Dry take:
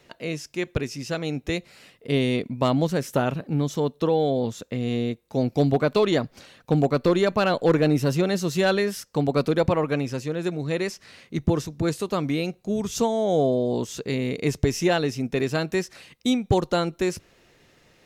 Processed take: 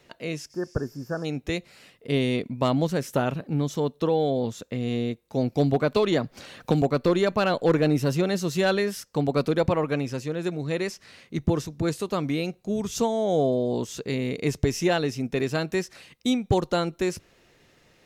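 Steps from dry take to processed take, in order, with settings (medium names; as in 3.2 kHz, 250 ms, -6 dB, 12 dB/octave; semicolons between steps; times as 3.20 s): 0.53–1.22 s: spectral replace 1.8–12 kHz before; 5.96–6.82 s: three bands compressed up and down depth 70%; trim -1.5 dB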